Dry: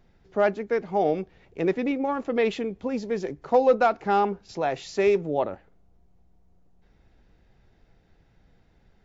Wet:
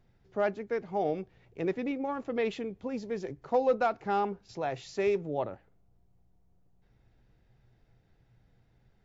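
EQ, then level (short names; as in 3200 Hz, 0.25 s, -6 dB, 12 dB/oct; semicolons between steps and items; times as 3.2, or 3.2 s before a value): bell 120 Hz +12 dB 0.3 oct; -7.0 dB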